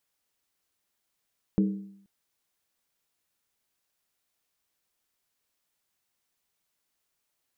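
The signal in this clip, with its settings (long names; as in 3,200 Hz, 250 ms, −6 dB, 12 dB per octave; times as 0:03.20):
struck skin length 0.48 s, lowest mode 197 Hz, decay 0.69 s, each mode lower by 7 dB, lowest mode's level −18 dB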